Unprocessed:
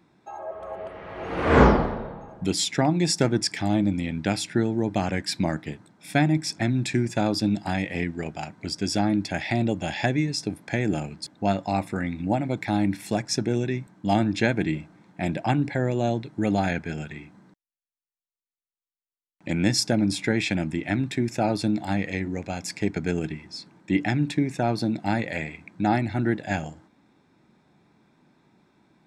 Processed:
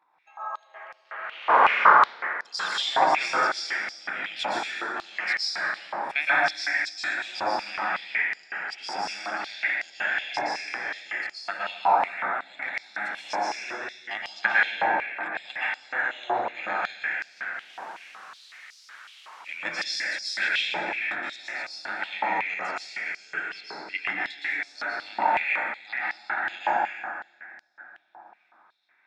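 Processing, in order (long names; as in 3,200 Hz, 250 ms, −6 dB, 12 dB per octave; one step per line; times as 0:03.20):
0:17.13–0:19.49: converter with a step at zero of −37 dBFS
output level in coarse steps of 10 dB
head-to-tape spacing loss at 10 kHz 25 dB
dense smooth reverb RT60 3.3 s, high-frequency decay 0.4×, pre-delay 105 ms, DRR −9 dB
high-pass on a step sequencer 5.4 Hz 940–5,000 Hz
level +2.5 dB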